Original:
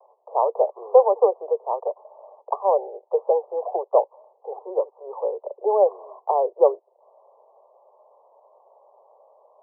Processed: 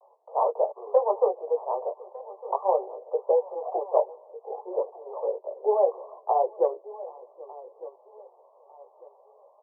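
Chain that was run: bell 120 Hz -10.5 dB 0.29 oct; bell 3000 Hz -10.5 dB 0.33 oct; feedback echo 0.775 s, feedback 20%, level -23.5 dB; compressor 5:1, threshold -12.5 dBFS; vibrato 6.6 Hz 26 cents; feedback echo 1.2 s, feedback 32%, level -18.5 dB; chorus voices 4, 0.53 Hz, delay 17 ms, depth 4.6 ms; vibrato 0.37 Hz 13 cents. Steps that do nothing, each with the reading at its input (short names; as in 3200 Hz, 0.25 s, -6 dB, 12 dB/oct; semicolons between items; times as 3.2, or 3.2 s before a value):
bell 120 Hz: input band starts at 320 Hz; bell 3000 Hz: input band ends at 1200 Hz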